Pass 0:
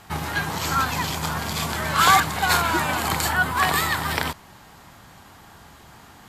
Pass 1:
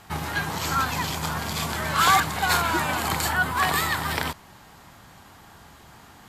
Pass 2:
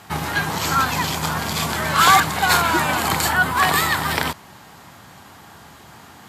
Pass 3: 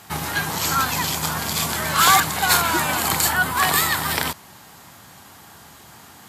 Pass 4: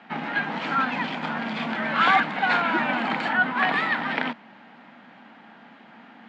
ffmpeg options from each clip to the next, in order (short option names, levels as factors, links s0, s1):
-af "acontrast=34,volume=0.447"
-af "highpass=87,volume=1.88"
-af "highshelf=f=5300:g=9.5,volume=0.708"
-af "highpass=f=210:w=0.5412,highpass=f=210:w=1.3066,equalizer=f=230:t=q:w=4:g=10,equalizer=f=390:t=q:w=4:g=-8,equalizer=f=1100:t=q:w=4:g=-7,lowpass=f=2700:w=0.5412,lowpass=f=2700:w=1.3066"